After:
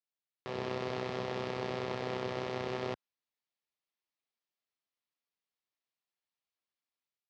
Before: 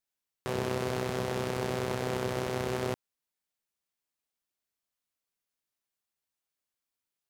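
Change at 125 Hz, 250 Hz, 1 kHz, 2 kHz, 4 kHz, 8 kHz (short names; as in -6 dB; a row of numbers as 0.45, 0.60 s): -7.5, -5.5, -3.0, -4.0, -3.5, -14.0 dB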